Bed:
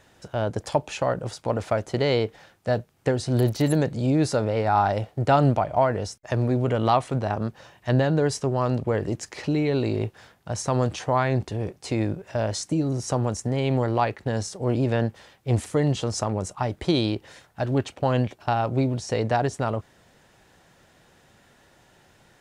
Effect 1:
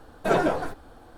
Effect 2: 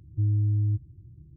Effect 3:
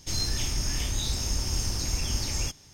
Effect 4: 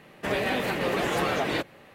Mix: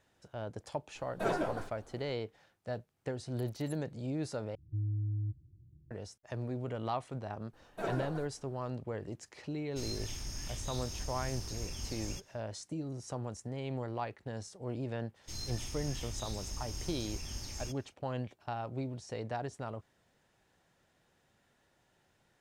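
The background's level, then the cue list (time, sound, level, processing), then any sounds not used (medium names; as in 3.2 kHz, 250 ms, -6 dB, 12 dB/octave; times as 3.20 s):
bed -15 dB
0.95 s: add 1 -10.5 dB
4.55 s: replace with 2 -10.5 dB
7.53 s: add 1 -15 dB
9.69 s: add 3 -12.5 dB, fades 0.10 s
15.21 s: add 3 -13 dB, fades 0.05 s
not used: 4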